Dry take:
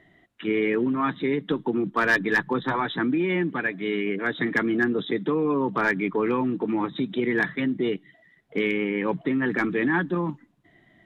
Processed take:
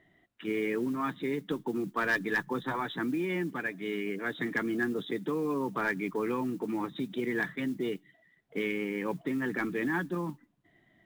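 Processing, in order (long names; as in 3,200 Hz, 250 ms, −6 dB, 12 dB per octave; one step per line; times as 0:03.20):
noise that follows the level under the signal 28 dB
level −7.5 dB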